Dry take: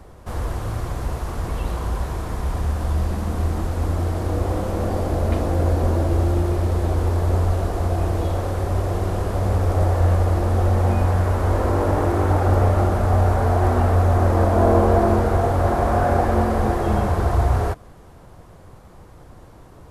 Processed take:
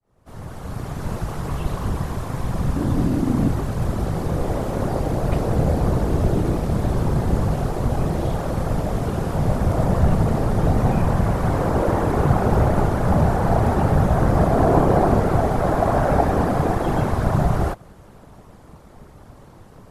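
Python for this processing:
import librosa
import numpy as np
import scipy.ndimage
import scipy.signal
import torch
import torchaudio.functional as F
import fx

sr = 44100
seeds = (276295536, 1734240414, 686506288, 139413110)

y = fx.fade_in_head(x, sr, length_s=1.12)
y = fx.whisperise(y, sr, seeds[0])
y = fx.peak_eq(y, sr, hz=290.0, db=15.0, octaves=0.68, at=(2.76, 3.48))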